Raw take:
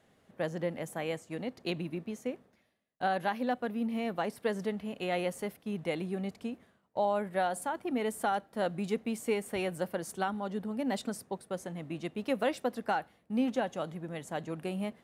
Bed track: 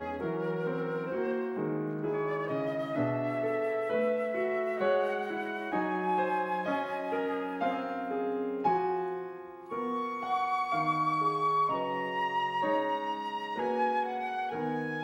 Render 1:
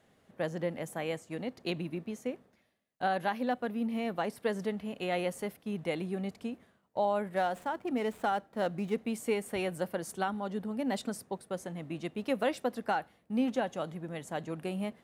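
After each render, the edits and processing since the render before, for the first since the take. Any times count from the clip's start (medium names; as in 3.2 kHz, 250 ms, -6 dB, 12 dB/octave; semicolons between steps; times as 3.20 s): 7.36–8.98 s: median filter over 9 samples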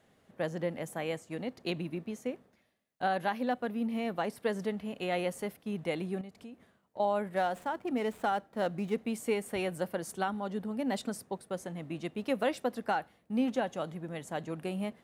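6.21–7.00 s: compression 2:1, threshold -51 dBFS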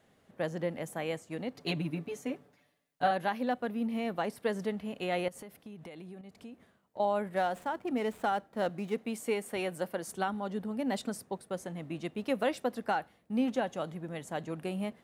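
1.54–3.11 s: comb 6.9 ms, depth 94%; 5.28–6.31 s: compression 8:1, threshold -43 dBFS; 8.69–10.08 s: high-pass 190 Hz 6 dB/octave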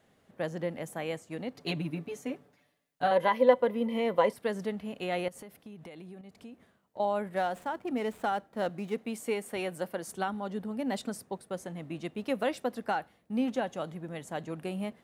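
3.11–4.33 s: small resonant body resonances 520/980/2000/3100 Hz, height 17 dB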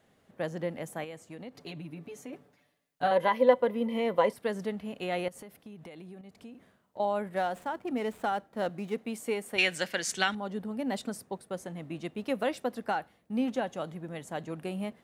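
1.04–2.33 s: compression 2.5:1, threshold -42 dBFS; 6.50–7.02 s: doubling 48 ms -5 dB; 9.58–10.35 s: high-order bell 3.5 kHz +16 dB 2.6 oct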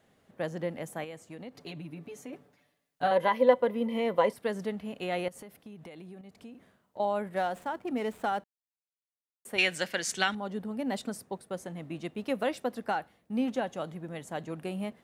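8.44–9.45 s: mute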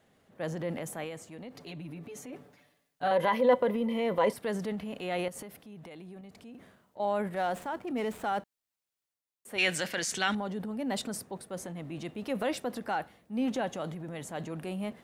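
transient shaper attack -4 dB, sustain +6 dB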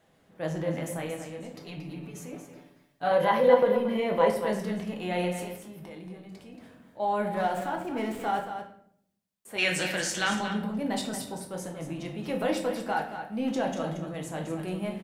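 on a send: delay 229 ms -9 dB; on the sum: simulated room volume 110 m³, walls mixed, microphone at 0.68 m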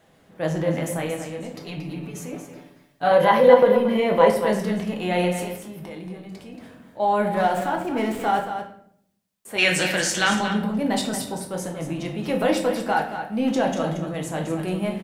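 trim +7 dB; peak limiter -1 dBFS, peak gain reduction 1 dB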